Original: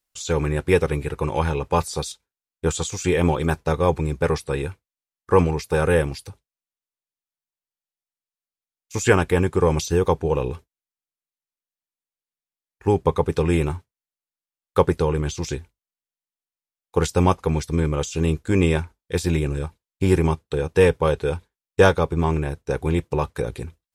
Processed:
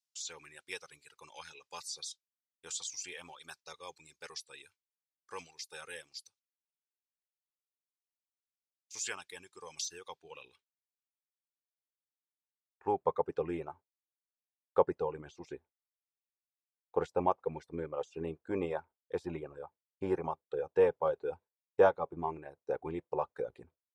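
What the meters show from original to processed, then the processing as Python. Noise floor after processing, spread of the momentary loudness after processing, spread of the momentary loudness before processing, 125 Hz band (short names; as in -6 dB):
under -85 dBFS, 19 LU, 11 LU, -28.0 dB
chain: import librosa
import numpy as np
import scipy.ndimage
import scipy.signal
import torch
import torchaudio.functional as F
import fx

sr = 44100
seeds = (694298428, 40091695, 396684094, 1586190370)

y = fx.dereverb_blind(x, sr, rt60_s=1.7)
y = fx.filter_sweep_bandpass(y, sr, from_hz=5300.0, to_hz=670.0, start_s=9.84, end_s=13.22, q=1.5)
y = y * 10.0 ** (-5.5 / 20.0)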